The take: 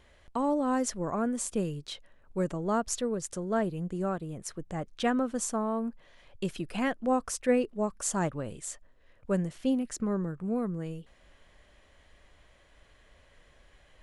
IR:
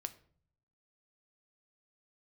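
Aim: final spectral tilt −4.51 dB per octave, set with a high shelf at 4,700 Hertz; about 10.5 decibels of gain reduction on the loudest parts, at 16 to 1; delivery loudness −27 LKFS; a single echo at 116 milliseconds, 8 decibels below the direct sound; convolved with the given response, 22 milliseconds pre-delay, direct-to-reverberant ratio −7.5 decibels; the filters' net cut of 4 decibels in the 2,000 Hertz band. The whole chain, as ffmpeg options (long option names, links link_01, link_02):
-filter_complex "[0:a]equalizer=frequency=2000:width_type=o:gain=-6.5,highshelf=frequency=4700:gain=8.5,acompressor=threshold=-31dB:ratio=16,aecho=1:1:116:0.398,asplit=2[link_01][link_02];[1:a]atrim=start_sample=2205,adelay=22[link_03];[link_02][link_03]afir=irnorm=-1:irlink=0,volume=10dB[link_04];[link_01][link_04]amix=inputs=2:normalize=0,volume=0.5dB"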